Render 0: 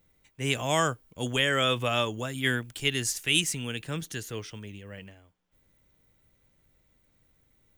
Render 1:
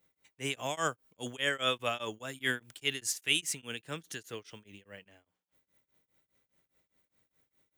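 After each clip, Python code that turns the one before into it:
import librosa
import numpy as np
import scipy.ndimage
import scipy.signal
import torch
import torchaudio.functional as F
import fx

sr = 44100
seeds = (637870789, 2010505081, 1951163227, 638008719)

y = fx.highpass(x, sr, hz=320.0, slope=6)
y = fx.tremolo_shape(y, sr, shape='triangle', hz=4.9, depth_pct=100)
y = F.gain(torch.from_numpy(y), -1.0).numpy()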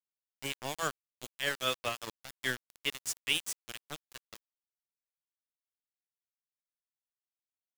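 y = np.where(np.abs(x) >= 10.0 ** (-31.5 / 20.0), x, 0.0)
y = F.gain(torch.from_numpy(y), -1.5).numpy()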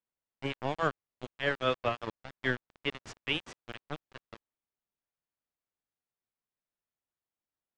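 y = fx.spacing_loss(x, sr, db_at_10k=38)
y = F.gain(torch.from_numpy(y), 8.5).numpy()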